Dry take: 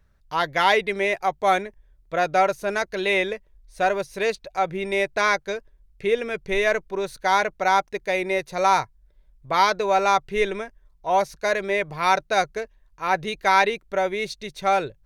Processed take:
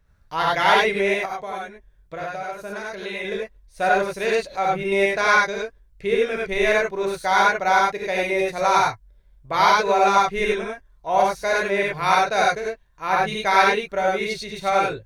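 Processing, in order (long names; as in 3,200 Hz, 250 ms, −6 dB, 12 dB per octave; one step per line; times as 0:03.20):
0:01.25–0:03.25: downward compressor 6 to 1, threshold −30 dBFS, peak gain reduction 15 dB
reverb whose tail is shaped and stops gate 120 ms rising, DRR −3.5 dB
level −2 dB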